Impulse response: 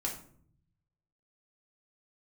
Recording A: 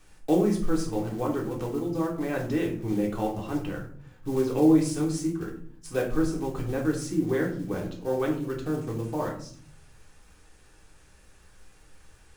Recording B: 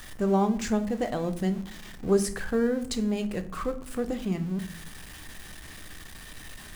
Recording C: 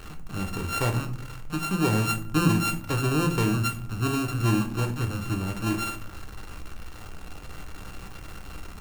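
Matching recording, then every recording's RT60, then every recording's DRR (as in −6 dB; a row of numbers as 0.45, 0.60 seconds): A; 0.55, 0.60, 0.55 seconds; −2.0, 8.0, 3.5 decibels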